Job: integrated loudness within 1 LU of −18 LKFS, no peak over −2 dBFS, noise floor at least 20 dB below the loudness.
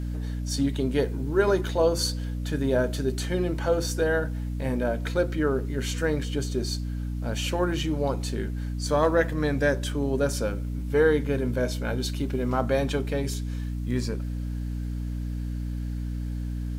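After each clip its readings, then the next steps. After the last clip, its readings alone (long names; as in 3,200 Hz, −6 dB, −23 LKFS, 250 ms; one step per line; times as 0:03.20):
mains hum 60 Hz; hum harmonics up to 300 Hz; level of the hum −28 dBFS; integrated loudness −27.5 LKFS; sample peak −9.0 dBFS; target loudness −18.0 LKFS
→ hum removal 60 Hz, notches 5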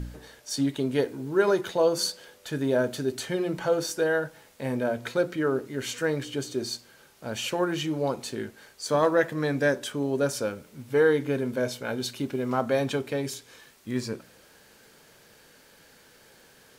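mains hum none found; integrated loudness −27.5 LKFS; sample peak −10.0 dBFS; target loudness −18.0 LKFS
→ level +9.5 dB
brickwall limiter −2 dBFS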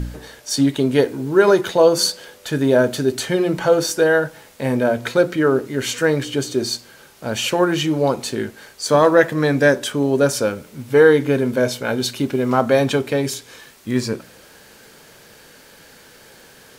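integrated loudness −18.5 LKFS; sample peak −2.0 dBFS; background noise floor −47 dBFS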